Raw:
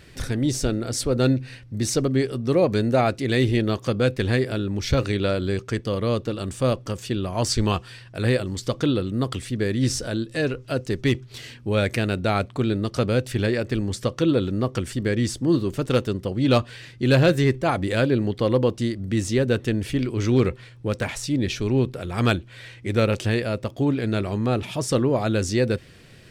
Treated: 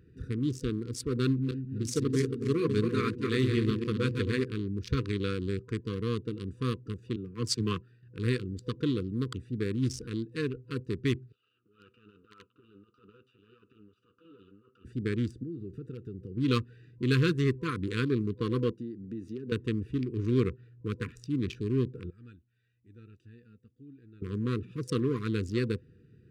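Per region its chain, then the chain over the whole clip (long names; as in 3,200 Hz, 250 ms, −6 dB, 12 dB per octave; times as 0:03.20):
0:01.24–0:04.44: feedback delay that plays each chunk backwards 137 ms, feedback 57%, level −5 dB + mains-hum notches 60/120/180/240 Hz
0:07.16–0:08.03: high-pass filter 100 Hz 24 dB per octave + multiband upward and downward expander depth 70%
0:11.32–0:14.85: lower of the sound and its delayed copy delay 9.9 ms + pair of resonant band-passes 1,900 Hz, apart 1.2 octaves + transient designer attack −11 dB, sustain +9 dB
0:15.43–0:16.37: parametric band 250 Hz −5.5 dB 0.24 octaves + downward compressor 4 to 1, threshold −29 dBFS
0:18.71–0:19.52: high-pass filter 180 Hz + notch filter 7,600 Hz, Q 5.7 + downward compressor 5 to 1, threshold −26 dBFS
0:22.10–0:24.22: guitar amp tone stack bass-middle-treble 5-5-5 + flanger 1 Hz, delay 2.9 ms, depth 1.7 ms, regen +52%
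whole clip: adaptive Wiener filter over 41 samples; high-pass filter 59 Hz; brick-wall band-stop 500–1,000 Hz; level −6.5 dB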